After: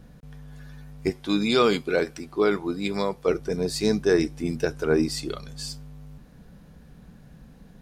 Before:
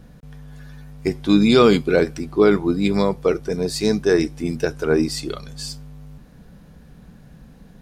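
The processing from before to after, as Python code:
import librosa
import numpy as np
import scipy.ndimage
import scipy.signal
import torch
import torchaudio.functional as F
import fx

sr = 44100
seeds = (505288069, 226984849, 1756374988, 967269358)

y = fx.low_shelf(x, sr, hz=310.0, db=-10.0, at=(1.1, 3.28))
y = y * librosa.db_to_amplitude(-3.5)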